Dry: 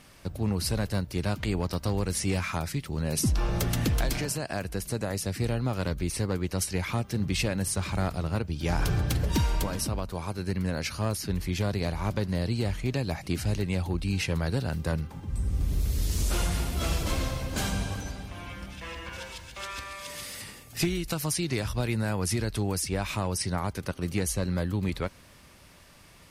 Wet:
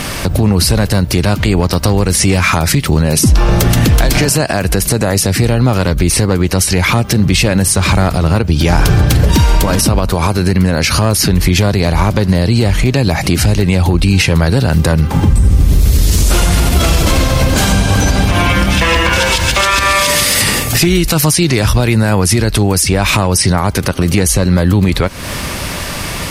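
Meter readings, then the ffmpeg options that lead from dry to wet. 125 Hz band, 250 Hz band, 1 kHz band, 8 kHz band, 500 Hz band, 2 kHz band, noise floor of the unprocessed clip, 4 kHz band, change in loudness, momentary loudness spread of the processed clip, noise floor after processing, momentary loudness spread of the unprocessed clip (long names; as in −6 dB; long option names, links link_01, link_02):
+18.0 dB, +18.0 dB, +19.5 dB, +19.0 dB, +17.5 dB, +20.5 dB, −53 dBFS, +20.0 dB, +18.5 dB, 3 LU, −21 dBFS, 9 LU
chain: -af "acompressor=threshold=-38dB:ratio=10,alimiter=level_in=34.5dB:limit=-1dB:release=50:level=0:latency=1,volume=-1dB"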